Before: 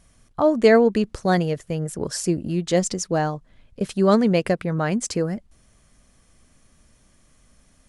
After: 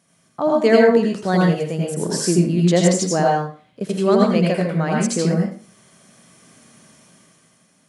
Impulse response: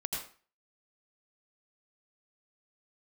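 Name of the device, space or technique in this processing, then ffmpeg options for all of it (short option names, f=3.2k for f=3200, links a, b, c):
far laptop microphone: -filter_complex "[1:a]atrim=start_sample=2205[a];[0:a][a]afir=irnorm=-1:irlink=0,highpass=f=140:w=0.5412,highpass=f=140:w=1.3066,dynaudnorm=f=150:g=11:m=10dB,volume=-1dB"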